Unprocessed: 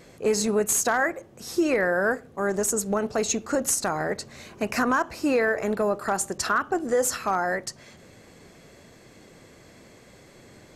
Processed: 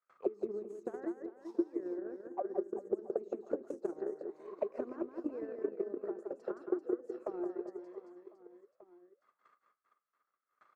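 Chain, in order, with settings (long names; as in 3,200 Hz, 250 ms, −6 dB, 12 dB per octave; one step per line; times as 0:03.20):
noise gate with hold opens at −39 dBFS
low-shelf EQ 160 Hz −6.5 dB
envelope filter 350–1,300 Hz, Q 16, down, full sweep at −22.5 dBFS
downward compressor 6 to 1, threshold −40 dBFS, peak gain reduction 16 dB
reverse bouncing-ball delay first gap 170 ms, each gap 1.3×, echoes 5
transient designer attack +10 dB, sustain −5 dB
level +1 dB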